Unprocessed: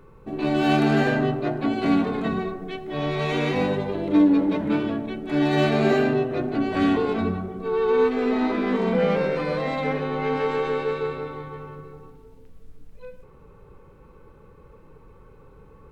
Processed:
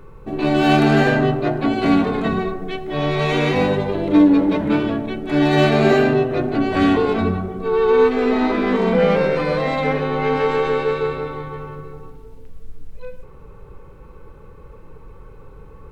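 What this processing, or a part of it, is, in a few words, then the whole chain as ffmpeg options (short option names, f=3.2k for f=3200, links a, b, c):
low shelf boost with a cut just above: -af "lowshelf=f=61:g=6.5,equalizer=f=230:t=o:w=0.92:g=-2.5,volume=6dB"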